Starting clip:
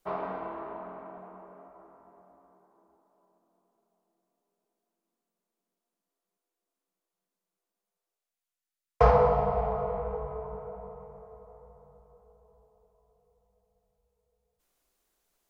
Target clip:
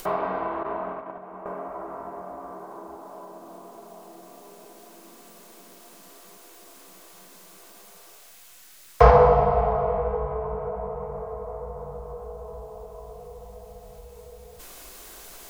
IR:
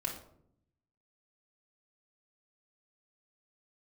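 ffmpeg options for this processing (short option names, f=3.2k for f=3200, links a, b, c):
-filter_complex "[0:a]asettb=1/sr,asplit=3[a][b][c];[a]atrim=end=0.634[d];[b]atrim=start=0.63:end=1.46,asetpts=PTS-STARTPTS,afade=t=in:d=0.004:c=qsin,afade=t=out:st=0.826:d=0.004:c=qsin,agate=range=-16dB:threshold=-42dB:ratio=16:detection=peak[e];[c]atrim=start=1.456[f];[d][e]acrossfade=d=0.004:c1=hsin:c2=qsin[g];[g][f]acrossfade=d=0.004:c1=qsin:c2=hsin,acompressor=mode=upward:threshold=-30dB:ratio=2.5,asplit=2[h][i];[1:a]atrim=start_sample=2205,lowshelf=f=460:g=-10.5[j];[i][j]afir=irnorm=-1:irlink=0,volume=-8dB[k];[h][k]amix=inputs=2:normalize=0,volume=5dB"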